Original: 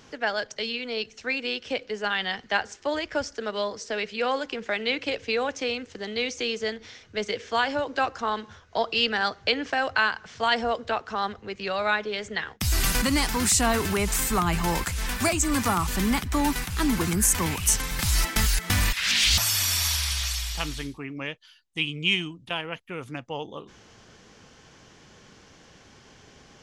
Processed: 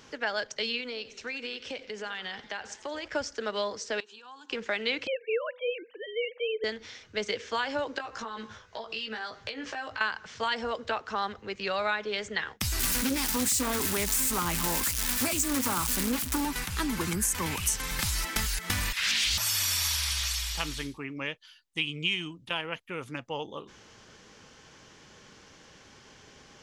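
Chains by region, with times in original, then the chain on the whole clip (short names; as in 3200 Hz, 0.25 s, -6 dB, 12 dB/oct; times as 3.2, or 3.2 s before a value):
0.8–3.08 compressor, threshold -32 dBFS + warbling echo 90 ms, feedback 62%, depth 174 cents, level -17 dB
4–4.5 compressor 8:1, threshold -36 dBFS + speaker cabinet 380–9200 Hz, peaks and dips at 480 Hz -9 dB, 690 Hz -5 dB, 1300 Hz -6 dB, 2500 Hz +3 dB, 5000 Hz -10 dB + fixed phaser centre 570 Hz, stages 6
5.07–6.64 sine-wave speech + de-hum 248.7 Hz, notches 5
7.98–10.01 compressor 16:1, threshold -33 dBFS + doubler 18 ms -3 dB
12.79–16.45 switching spikes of -15 dBFS + bell 260 Hz +12 dB 0.23 oct + Doppler distortion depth 0.44 ms
whole clip: compressor, threshold -24 dBFS; low shelf 330 Hz -4.5 dB; notch 710 Hz, Q 12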